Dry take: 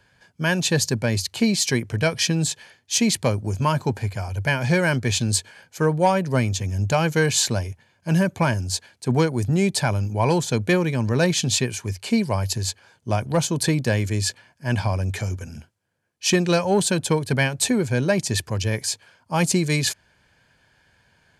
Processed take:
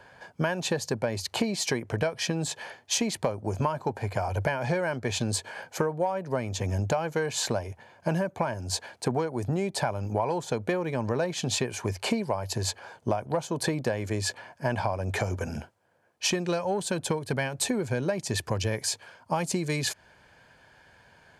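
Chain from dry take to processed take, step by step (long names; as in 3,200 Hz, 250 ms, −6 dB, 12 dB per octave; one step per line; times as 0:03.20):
parametric band 720 Hz +14 dB 2.4 octaves, from 0:16.31 +7.5 dB
downward compressor 16 to 1, threshold −24 dBFS, peak gain reduction 24 dB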